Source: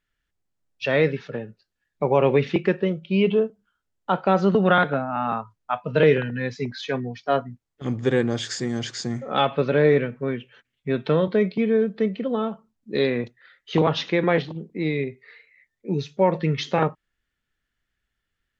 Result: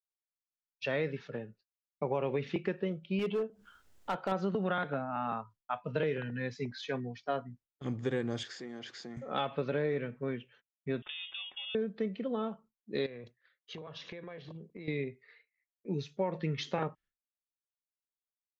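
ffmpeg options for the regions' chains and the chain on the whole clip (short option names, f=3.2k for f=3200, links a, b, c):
-filter_complex "[0:a]asettb=1/sr,asplit=3[a][b][c];[a]atrim=end=3.194[d];[b]atrim=start=3.19:end=4.32,asetpts=PTS-STARTPTS,afade=t=in:d=0.004:c=qsin,afade=t=out:st=1.126:d=0.004:c=qsin,equalizer=f=150:w=0.87:g=-4,acompressor=mode=upward:threshold=-25dB:ratio=2.5:attack=3.2:release=140:knee=2.83:detection=peak,asoftclip=type=hard:threshold=-17dB[e];[c]atrim=start=4.316[f];[d][e]acrossfade=d=0.004:c1=hsin:c2=qsin[g];[g][f]acrossfade=d=0.004:c1=qsin:c2=hsin,asettb=1/sr,asplit=3[h][i][j];[h]atrim=end=8.434[k];[i]atrim=start=8.43:end=9.17,asetpts=PTS-STARTPTS,afade=t=in:d=0.004:c=qsin,afade=t=out:st=0.736:d=0.004:c=qsin,highpass=260,lowpass=4k,acompressor=threshold=-34dB:ratio=2:attack=3.2:release=140:knee=1:detection=peak[l];[j]atrim=start=9.166[m];[k][l]acrossfade=d=0.004:c1=hsin:c2=qsin[n];[n][m]acrossfade=d=0.004:c1=qsin:c2=hsin,asettb=1/sr,asplit=3[o][p][q];[o]atrim=end=11.024[r];[p]atrim=start=11.02:end=11.75,asetpts=PTS-STARTPTS,afade=t=in:d=0.004:c=qsin,afade=t=out:st=0.726:d=0.004:c=qsin,acompressor=threshold=-26dB:ratio=12:attack=3.2:release=140:knee=1:detection=peak,aeval=exprs='val(0)*sin(2*PI*720*n/s)':c=same,lowpass=f=3.2k:t=q:w=0.5098,lowpass=f=3.2k:t=q:w=0.6013,lowpass=f=3.2k:t=q:w=0.9,lowpass=f=3.2k:t=q:w=2.563,afreqshift=-3800[s];[q]atrim=start=11.746[t];[r][s]acrossfade=d=0.004:c1=hsin:c2=qsin[u];[u][t]acrossfade=d=0.004:c1=qsin:c2=hsin,asettb=1/sr,asplit=3[v][w][x];[v]atrim=end=13.064[y];[w]atrim=start=13.06:end=14.88,asetpts=PTS-STARTPTS,afade=t=in:d=0.004:c=qsin,afade=t=out:st=1.816:d=0.004:c=qsin,highpass=40,aecho=1:1:1.8:0.38,atrim=end_sample=80262,acompressor=threshold=-32dB:ratio=16:attack=3.2:release=140:knee=1:detection=peak[z];[x]atrim=start=14.876[aa];[y][z]acrossfade=d=0.004:c1=hsin:c2=qsin[ab];[ab][aa]acrossfade=d=0.004:c1=qsin:c2=hsin,agate=range=-33dB:threshold=-44dB:ratio=3:detection=peak,acompressor=threshold=-19dB:ratio=6,volume=-9dB"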